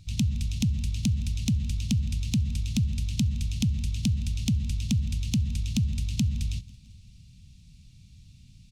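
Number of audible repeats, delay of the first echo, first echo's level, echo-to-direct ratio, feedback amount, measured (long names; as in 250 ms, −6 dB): 3, 166 ms, −22.5 dB, −20.5 dB, 59%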